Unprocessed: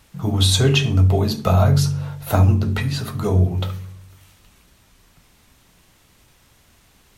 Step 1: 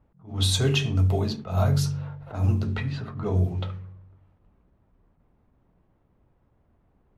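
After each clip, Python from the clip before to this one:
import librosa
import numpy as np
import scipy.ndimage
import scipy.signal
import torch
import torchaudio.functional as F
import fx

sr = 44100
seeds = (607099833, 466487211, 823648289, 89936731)

y = fx.env_lowpass(x, sr, base_hz=750.0, full_db=-11.5)
y = fx.attack_slew(y, sr, db_per_s=150.0)
y = y * 10.0 ** (-6.5 / 20.0)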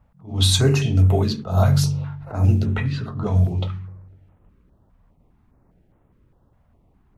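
y = fx.filter_held_notch(x, sr, hz=4.9, low_hz=360.0, high_hz=4700.0)
y = y * 10.0 ** (6.0 / 20.0)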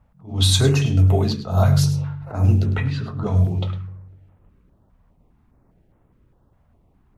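y = x + 10.0 ** (-13.5 / 20.0) * np.pad(x, (int(105 * sr / 1000.0), 0))[:len(x)]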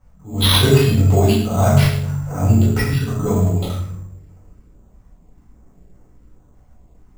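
y = fx.room_shoebox(x, sr, seeds[0], volume_m3=110.0, walls='mixed', distance_m=2.0)
y = np.repeat(y[::6], 6)[:len(y)]
y = y * 10.0 ** (-2.5 / 20.0)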